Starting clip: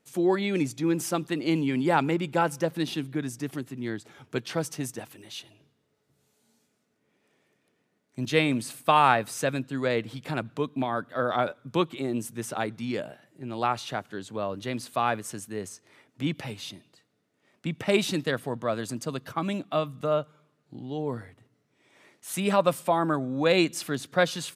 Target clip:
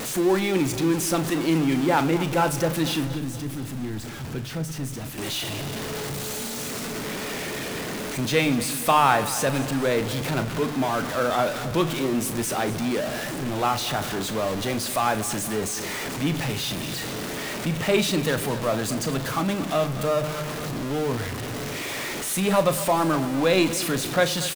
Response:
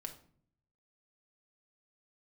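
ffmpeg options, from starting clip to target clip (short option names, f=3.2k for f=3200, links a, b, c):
-filter_complex "[0:a]aeval=exprs='val(0)+0.5*0.0531*sgn(val(0))':c=same,asettb=1/sr,asplit=3[a][b][c];[a]atrim=end=3.074[d];[b]atrim=start=3.07:end=5.18,asetpts=PTS-STARTPTS,afade=t=in:d=0.004:c=qsin,afade=t=out:st=2.106:d=0.004:c=qsin,acrossover=split=230[e][f];[f]acompressor=threshold=-53dB:ratio=1.5[g];[e][g]amix=inputs=2:normalize=0[h];[c]atrim=start=5.176[i];[d][h]acrossfade=d=0.004:c1=hsin:c2=qsin[j];[j][i]acrossfade=d=0.004:c1=qsin:c2=hsin,aecho=1:1:237|474|711|948|1185:0.178|0.0996|0.0558|0.0312|0.0175,asplit=2[k][l];[1:a]atrim=start_sample=2205,adelay=37[m];[l][m]afir=irnorm=-1:irlink=0,volume=-7.5dB[n];[k][n]amix=inputs=2:normalize=0"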